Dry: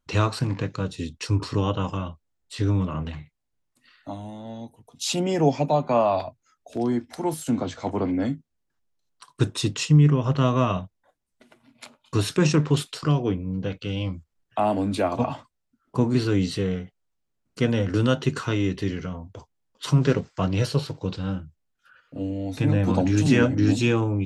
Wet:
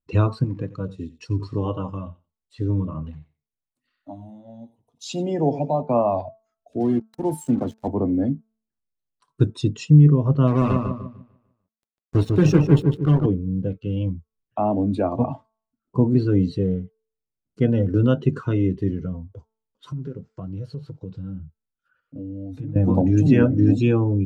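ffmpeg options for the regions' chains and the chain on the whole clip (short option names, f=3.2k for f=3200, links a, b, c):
-filter_complex "[0:a]asettb=1/sr,asplit=3[a][b][c];[a]atrim=end=0.454[d];[b]atrim=start=0.45:end=5.82,asetpts=PTS-STARTPTS,afade=t=in:d=0.004:c=qsin,afade=t=out:st=5.366:d=0.004:c=qsin,lowshelf=f=360:g=-6.5,aecho=1:1:90|180:0.251|0.0402,atrim=end_sample=236817[e];[c]atrim=start=5.816[f];[d][e]acrossfade=d=0.004:c1=hsin:c2=qsin[g];[g][f]acrossfade=d=0.004:c1=qsin:c2=hsin,asettb=1/sr,asplit=3[h][i][j];[h]atrim=end=6.804[k];[i]atrim=start=6.8:end=7.88,asetpts=PTS-STARTPTS,afade=t=in:d=0.004:c=qsin,afade=t=out:st=1.076:d=0.004:c=qsin,highpass=90,highshelf=f=4.4k:g=8.5,acrusher=bits=4:mix=0:aa=0.5[l];[j]atrim=start=7.876[m];[k][l]acrossfade=d=0.004:c1=hsin:c2=qsin[n];[n][m]acrossfade=d=0.004:c1=qsin:c2=hsin,asettb=1/sr,asplit=3[o][p][q];[o]atrim=end=10.474[r];[p]atrim=start=10.47:end=13.26,asetpts=PTS-STARTPTS,afade=t=in:d=0.004:c=qsin,afade=t=out:st=2.786:d=0.004:c=qsin,equalizer=f=700:t=o:w=0.39:g=-7,acrusher=bits=3:mix=0:aa=0.5,asplit=2[s][t];[t]adelay=149,lowpass=f=3.7k:p=1,volume=-3.5dB,asplit=2[u][v];[v]adelay=149,lowpass=f=3.7k:p=1,volume=0.46,asplit=2[w][x];[x]adelay=149,lowpass=f=3.7k:p=1,volume=0.46,asplit=2[y][z];[z]adelay=149,lowpass=f=3.7k:p=1,volume=0.46,asplit=2[aa][ab];[ab]adelay=149,lowpass=f=3.7k:p=1,volume=0.46,asplit=2[ac][ad];[ad]adelay=149,lowpass=f=3.7k:p=1,volume=0.46[ae];[s][u][w][y][aa][ac][ae]amix=inputs=7:normalize=0,atrim=end_sample=123039[af];[q]atrim=start=13.256[ag];[r][af]acrossfade=d=0.004:c1=hsin:c2=qsin[ah];[ah][ag]acrossfade=d=0.004:c1=qsin:c2=hsin,asettb=1/sr,asplit=3[ai][aj][ak];[ai]atrim=end=19.324[al];[aj]atrim=start=19.32:end=22.76,asetpts=PTS-STARTPTS,afade=t=in:d=0.004:c=qsin,afade=t=out:st=3.436:d=0.004:c=qsin,acompressor=threshold=-32dB:ratio=5:attack=3.2:release=140:knee=1:detection=peak,equalizer=f=1.4k:w=5.1:g=5[am];[ak]atrim=start=22.756[an];[al][am]acrossfade=d=0.004:c1=hsin:c2=qsin[ao];[ao][an]acrossfade=d=0.004:c1=qsin:c2=hsin,bandreject=f=221.2:t=h:w=4,bandreject=f=442.4:t=h:w=4,bandreject=f=663.6:t=h:w=4,bandreject=f=884.8:t=h:w=4,bandreject=f=1.106k:t=h:w=4,bandreject=f=1.3272k:t=h:w=4,bandreject=f=1.5484k:t=h:w=4,afftdn=nr=14:nf=-30,tiltshelf=f=860:g=5.5,volume=-1dB"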